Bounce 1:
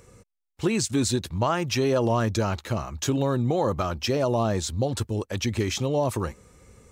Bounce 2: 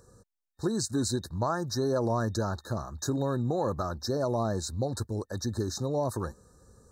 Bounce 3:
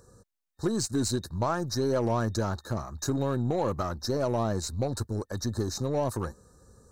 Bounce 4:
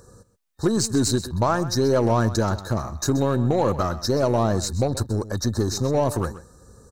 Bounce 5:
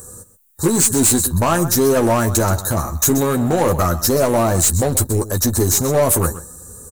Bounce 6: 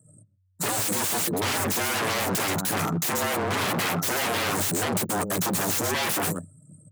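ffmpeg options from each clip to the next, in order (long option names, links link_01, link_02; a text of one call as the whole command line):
ffmpeg -i in.wav -af "afftfilt=real='re*(1-between(b*sr/4096,1800,3700))':imag='im*(1-between(b*sr/4096,1800,3700))':win_size=4096:overlap=0.75,volume=-5dB" out.wav
ffmpeg -i in.wav -af "aeval=exprs='0.133*(cos(1*acos(clip(val(0)/0.133,-1,1)))-cos(1*PI/2))+0.00473*(cos(8*acos(clip(val(0)/0.133,-1,1)))-cos(8*PI/2))':channel_layout=same,volume=1dB" out.wav
ffmpeg -i in.wav -af "aecho=1:1:129:0.178,volume=7dB" out.wav
ffmpeg -i in.wav -filter_complex "[0:a]aexciter=amount=9.2:drive=4.5:freq=7200,volume=18dB,asoftclip=hard,volume=-18dB,asplit=2[link_01][link_02];[link_02]adelay=12,volume=-6dB[link_03];[link_01][link_03]amix=inputs=2:normalize=0,volume=6dB" out.wav
ffmpeg -i in.wav -af "anlmdn=63.1,aeval=exprs='0.0891*(abs(mod(val(0)/0.0891+3,4)-2)-1)':channel_layout=same,afreqshift=93" out.wav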